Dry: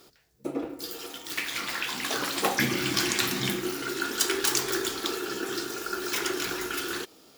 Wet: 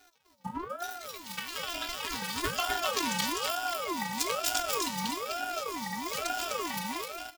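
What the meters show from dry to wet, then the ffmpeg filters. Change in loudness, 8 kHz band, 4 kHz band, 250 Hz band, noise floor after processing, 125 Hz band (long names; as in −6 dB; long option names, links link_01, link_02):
−4.0 dB, −5.0 dB, −4.0 dB, −6.5 dB, −62 dBFS, −6.5 dB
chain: -af "afftfilt=real='hypot(re,im)*cos(PI*b)':imag='0':win_size=512:overlap=0.75,aecho=1:1:253|506|759:0.708|0.135|0.0256,aeval=exprs='val(0)*sin(2*PI*810*n/s+810*0.35/1.1*sin(2*PI*1.1*n/s))':channel_layout=same"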